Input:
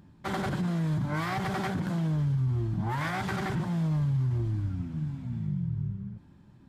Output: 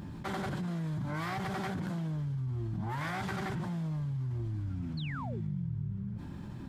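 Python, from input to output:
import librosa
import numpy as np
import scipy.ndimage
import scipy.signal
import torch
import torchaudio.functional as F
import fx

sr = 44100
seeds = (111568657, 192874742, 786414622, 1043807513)

y = fx.spec_paint(x, sr, seeds[0], shape='fall', start_s=4.97, length_s=0.44, low_hz=310.0, high_hz=4600.0, level_db=-41.0)
y = fx.env_flatten(y, sr, amount_pct=70)
y = y * 10.0 ** (-8.5 / 20.0)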